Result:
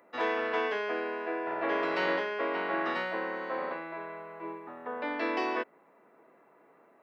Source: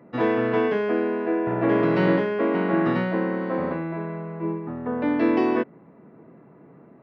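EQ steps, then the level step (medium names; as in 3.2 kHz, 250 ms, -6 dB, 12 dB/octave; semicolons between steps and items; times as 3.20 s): high-pass 610 Hz 12 dB/octave; treble shelf 4 kHz +10 dB; -3.5 dB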